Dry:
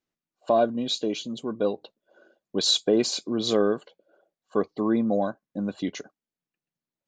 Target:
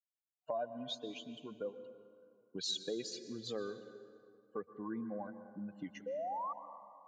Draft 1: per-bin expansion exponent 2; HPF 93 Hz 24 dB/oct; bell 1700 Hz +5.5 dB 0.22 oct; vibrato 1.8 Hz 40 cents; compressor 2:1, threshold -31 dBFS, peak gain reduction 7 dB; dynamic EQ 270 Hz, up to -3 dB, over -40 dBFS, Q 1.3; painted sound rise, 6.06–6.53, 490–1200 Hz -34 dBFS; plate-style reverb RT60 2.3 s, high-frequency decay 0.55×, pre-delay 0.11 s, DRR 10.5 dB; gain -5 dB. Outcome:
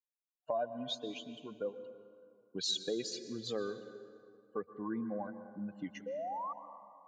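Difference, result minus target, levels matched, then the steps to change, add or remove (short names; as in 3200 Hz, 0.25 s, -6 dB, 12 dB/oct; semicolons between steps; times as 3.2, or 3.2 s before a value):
compressor: peak gain reduction -3 dB
change: compressor 2:1, threshold -37.5 dBFS, peak gain reduction 10.5 dB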